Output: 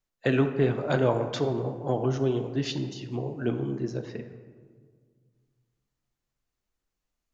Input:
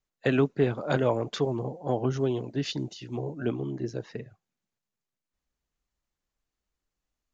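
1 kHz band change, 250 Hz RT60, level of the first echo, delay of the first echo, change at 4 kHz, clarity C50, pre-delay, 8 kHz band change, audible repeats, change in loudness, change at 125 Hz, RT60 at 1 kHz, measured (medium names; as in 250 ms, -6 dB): +1.0 dB, 2.2 s, no echo, no echo, +0.5 dB, 9.0 dB, 3 ms, no reading, no echo, +1.0 dB, +2.0 dB, 1.7 s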